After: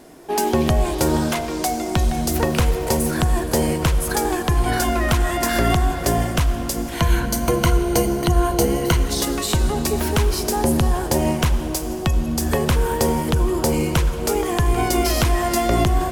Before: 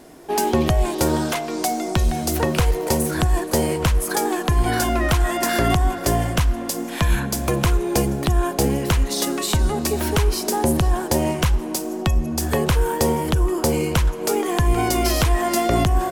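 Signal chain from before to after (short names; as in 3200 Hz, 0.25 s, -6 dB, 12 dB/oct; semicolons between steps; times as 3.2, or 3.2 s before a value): 6.94–8.97 ripple EQ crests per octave 1.9, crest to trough 9 dB; reverb RT60 3.3 s, pre-delay 74 ms, DRR 11 dB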